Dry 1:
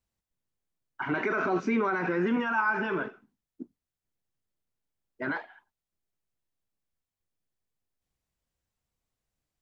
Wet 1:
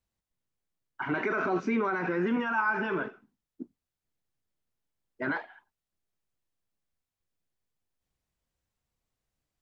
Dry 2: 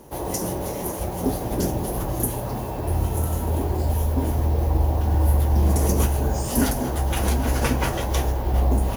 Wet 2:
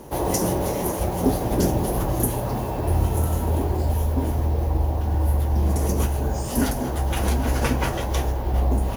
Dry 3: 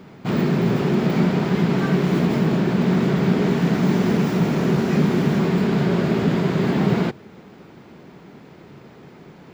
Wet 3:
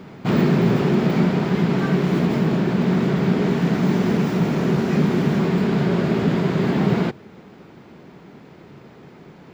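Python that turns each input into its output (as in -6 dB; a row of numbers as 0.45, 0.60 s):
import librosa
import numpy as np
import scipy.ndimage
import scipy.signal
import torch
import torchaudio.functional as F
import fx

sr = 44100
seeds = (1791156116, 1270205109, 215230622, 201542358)

y = fx.high_shelf(x, sr, hz=6500.0, db=-3.5)
y = fx.rider(y, sr, range_db=10, speed_s=2.0)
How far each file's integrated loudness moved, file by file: -1.0, 0.0, 0.0 LU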